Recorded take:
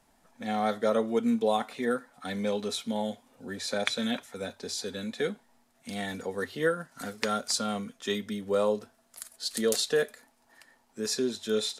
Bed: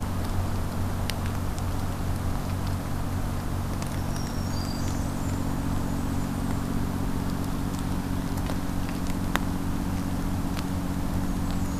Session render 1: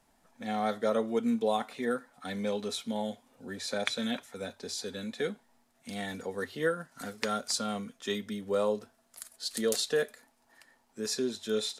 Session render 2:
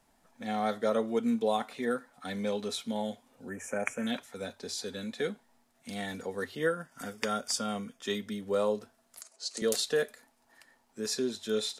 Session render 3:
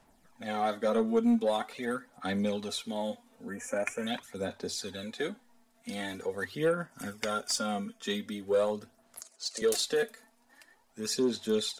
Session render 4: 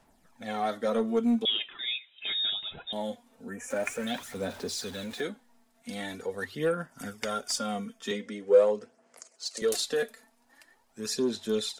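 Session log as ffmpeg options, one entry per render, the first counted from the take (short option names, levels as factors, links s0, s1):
-af "volume=0.75"
-filter_complex "[0:a]asettb=1/sr,asplit=3[s0][s1][s2];[s0]atrim=end=3.494[s3];[s1]atrim=start=3.49:end=4.07,asetpts=PTS-STARTPTS,afade=t=in:d=0.004:c=qsin,afade=t=out:st=0.576:d=0.004:c=qsin,asuperstop=centerf=4100:order=8:qfactor=1.2[s4];[s2]atrim=start=4.066[s5];[s3][s4]acrossfade=d=0.004:c1=hsin:c2=qsin[s6];[s6][s5]acrossfade=d=0.004:c1=qsin:c2=hsin,asettb=1/sr,asplit=3[s7][s8][s9];[s7]atrim=end=6.554[s10];[s8]atrim=start=6.55:end=8.02,asetpts=PTS-STARTPTS,afade=t=in:d=0.004:c=qsin,afade=t=out:st=1.466:d=0.004:c=qsin,asuperstop=centerf=4100:order=8:qfactor=6.7[s11];[s9]atrim=start=8.016[s12];[s10][s11]acrossfade=d=0.004:c1=hsin:c2=qsin[s13];[s13][s12]acrossfade=d=0.004:c1=qsin:c2=hsin,asettb=1/sr,asplit=3[s14][s15][s16];[s14]atrim=end=9.214[s17];[s15]atrim=start=9.21:end=9.62,asetpts=PTS-STARTPTS,afade=t=in:d=0.004:c=qsin,afade=t=out:st=0.406:d=0.004:c=qsin,highpass=370,equalizer=f=390:t=q:w=4:g=5,equalizer=f=600:t=q:w=4:g=3,equalizer=f=1700:t=q:w=4:g=-8,equalizer=f=3400:t=q:w=4:g=-9,equalizer=f=6300:t=q:w=4:g=4,lowpass=f=8200:w=0.5412,lowpass=f=8200:w=1.3066[s18];[s16]atrim=start=9.616[s19];[s17][s18]acrossfade=d=0.004:c1=hsin:c2=qsin[s20];[s20][s19]acrossfade=d=0.004:c1=qsin:c2=hsin"
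-af "aphaser=in_gain=1:out_gain=1:delay=4.5:decay=0.5:speed=0.44:type=sinusoidal,asoftclip=type=tanh:threshold=0.126"
-filter_complex "[0:a]asettb=1/sr,asplit=3[s0][s1][s2];[s0]atrim=end=1.454[s3];[s1]atrim=start=1.45:end=2.93,asetpts=PTS-STARTPTS,afade=t=in:d=0.004:c=qsin,afade=t=out:st=1.476:d=0.004:c=qsin,lowpass=f=3300:t=q:w=0.5098,lowpass=f=3300:t=q:w=0.6013,lowpass=f=3300:t=q:w=0.9,lowpass=f=3300:t=q:w=2.563,afreqshift=-3900[s4];[s2]atrim=start=2.926[s5];[s3][s4]acrossfade=d=0.004:c1=hsin:c2=qsin[s6];[s6][s5]acrossfade=d=0.004:c1=qsin:c2=hsin,asettb=1/sr,asplit=3[s7][s8][s9];[s7]atrim=end=3.704[s10];[s8]atrim=start=3.7:end=5.21,asetpts=PTS-STARTPTS,afade=t=in:d=0.004:c=qsin,afade=t=out:st=1.506:d=0.004:c=qsin,aeval=exprs='val(0)+0.5*0.00794*sgn(val(0))':c=same[s11];[s9]atrim=start=5.206[s12];[s10][s11]acrossfade=d=0.004:c1=hsin:c2=qsin[s13];[s13][s12]acrossfade=d=0.004:c1=qsin:c2=hsin,asettb=1/sr,asplit=3[s14][s15][s16];[s14]atrim=end=8.114[s17];[s15]atrim=start=8.11:end=9.36,asetpts=PTS-STARTPTS,afade=t=in:d=0.004:c=qsin,afade=t=out:st=1.246:d=0.004:c=qsin,highpass=180,equalizer=f=480:t=q:w=4:g=10,equalizer=f=2100:t=q:w=4:g=4,equalizer=f=3800:t=q:w=4:g=-8,lowpass=f=8400:w=0.5412,lowpass=f=8400:w=1.3066[s18];[s16]atrim=start=9.356[s19];[s17][s18]acrossfade=d=0.004:c1=hsin:c2=qsin[s20];[s20][s19]acrossfade=d=0.004:c1=qsin:c2=hsin"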